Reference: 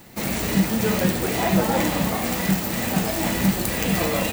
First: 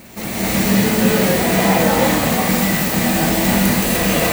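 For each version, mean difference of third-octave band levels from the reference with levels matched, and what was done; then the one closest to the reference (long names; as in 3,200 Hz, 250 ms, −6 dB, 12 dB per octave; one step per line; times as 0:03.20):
3.0 dB: backwards echo 268 ms −15.5 dB
reverb whose tail is shaped and stops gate 320 ms rising, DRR −7.5 dB
level −1 dB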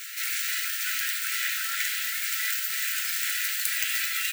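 22.0 dB: linear-phase brick-wall high-pass 1,300 Hz
backwards echo 356 ms −9.5 dB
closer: first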